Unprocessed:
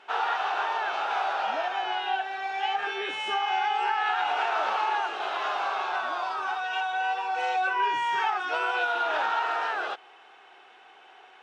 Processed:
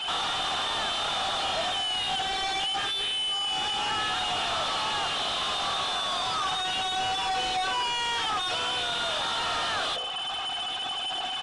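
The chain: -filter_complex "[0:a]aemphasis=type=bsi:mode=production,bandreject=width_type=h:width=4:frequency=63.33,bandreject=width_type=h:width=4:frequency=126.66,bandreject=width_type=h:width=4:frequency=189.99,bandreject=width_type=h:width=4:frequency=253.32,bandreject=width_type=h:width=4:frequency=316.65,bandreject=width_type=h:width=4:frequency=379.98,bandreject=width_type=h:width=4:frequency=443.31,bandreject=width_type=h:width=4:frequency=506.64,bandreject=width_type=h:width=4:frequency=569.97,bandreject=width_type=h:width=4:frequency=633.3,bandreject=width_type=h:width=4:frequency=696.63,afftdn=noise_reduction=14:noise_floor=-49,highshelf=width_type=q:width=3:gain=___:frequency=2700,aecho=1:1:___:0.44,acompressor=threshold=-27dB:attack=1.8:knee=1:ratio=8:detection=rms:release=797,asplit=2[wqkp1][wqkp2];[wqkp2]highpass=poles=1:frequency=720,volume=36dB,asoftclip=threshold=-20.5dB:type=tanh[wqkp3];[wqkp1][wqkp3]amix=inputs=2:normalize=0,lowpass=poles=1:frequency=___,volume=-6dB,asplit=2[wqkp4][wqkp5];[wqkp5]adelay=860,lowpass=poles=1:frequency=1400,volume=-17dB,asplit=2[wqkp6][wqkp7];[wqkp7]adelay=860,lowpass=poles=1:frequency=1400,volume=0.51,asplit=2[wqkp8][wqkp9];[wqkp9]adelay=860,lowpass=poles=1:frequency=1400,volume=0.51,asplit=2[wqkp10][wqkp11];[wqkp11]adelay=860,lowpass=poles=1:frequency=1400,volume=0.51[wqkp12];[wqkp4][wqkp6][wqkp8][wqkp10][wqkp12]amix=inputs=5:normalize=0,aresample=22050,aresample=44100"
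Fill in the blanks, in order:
8, 1.7, 2500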